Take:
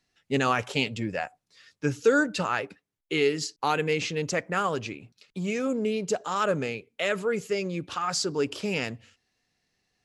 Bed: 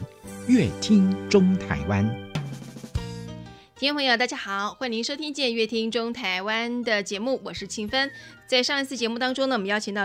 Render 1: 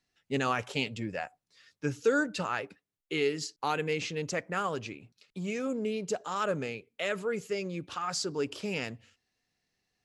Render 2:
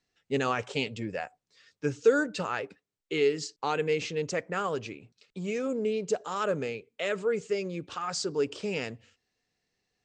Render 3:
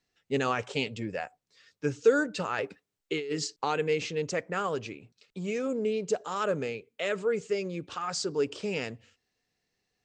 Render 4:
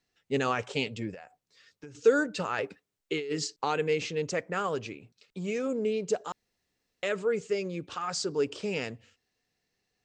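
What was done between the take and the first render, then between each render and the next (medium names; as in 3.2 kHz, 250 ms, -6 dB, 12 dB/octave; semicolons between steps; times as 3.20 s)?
trim -5 dB
steep low-pass 9 kHz 96 dB/octave; peaking EQ 450 Hz +5 dB 0.55 oct
2.58–3.65 s: compressor with a negative ratio -31 dBFS
1.14–1.95 s: compression 16:1, threshold -41 dBFS; 6.32–7.03 s: room tone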